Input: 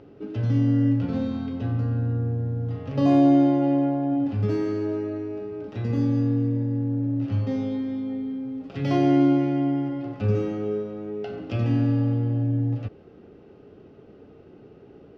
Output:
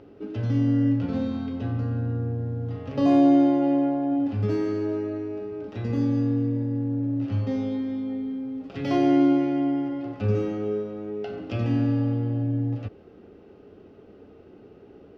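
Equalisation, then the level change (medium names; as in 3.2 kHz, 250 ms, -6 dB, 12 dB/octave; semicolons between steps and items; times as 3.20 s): peaking EQ 140 Hz -9.5 dB 0.31 oct; 0.0 dB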